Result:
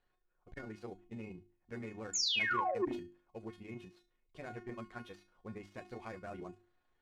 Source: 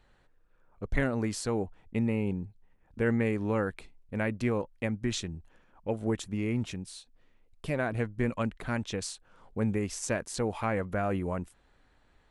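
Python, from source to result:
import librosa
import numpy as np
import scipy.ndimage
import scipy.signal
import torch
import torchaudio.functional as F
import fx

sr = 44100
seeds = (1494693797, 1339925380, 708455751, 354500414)

y = fx.dead_time(x, sr, dead_ms=0.074)
y = fx.air_absorb(y, sr, metres=72.0)
y = fx.spec_paint(y, sr, seeds[0], shape='fall', start_s=3.74, length_s=1.41, low_hz=230.0, high_hz=7300.0, level_db=-21.0)
y = fx.low_shelf(y, sr, hz=76.0, db=-6.5)
y = fx.comb_fb(y, sr, f0_hz=360.0, decay_s=0.51, harmonics='all', damping=0.0, mix_pct=90)
y = fx.stretch_grains(y, sr, factor=0.57, grain_ms=71.0)
y = fx.hum_notches(y, sr, base_hz=50, count=7)
y = fx.transformer_sat(y, sr, knee_hz=540.0)
y = y * 10.0 ** (4.5 / 20.0)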